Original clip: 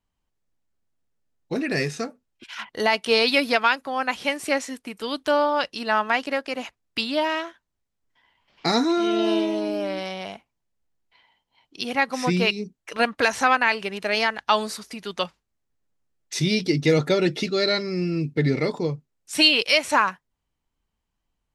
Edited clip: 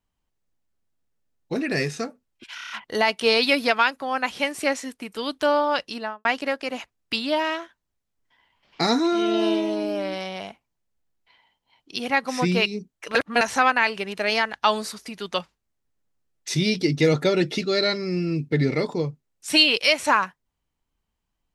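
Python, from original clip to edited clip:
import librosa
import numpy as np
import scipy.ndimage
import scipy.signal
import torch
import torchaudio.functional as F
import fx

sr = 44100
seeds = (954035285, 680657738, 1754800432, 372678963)

y = fx.studio_fade_out(x, sr, start_s=5.73, length_s=0.37)
y = fx.edit(y, sr, fx.stutter(start_s=2.55, slice_s=0.03, count=6),
    fx.reverse_span(start_s=13.0, length_s=0.26), tone=tone)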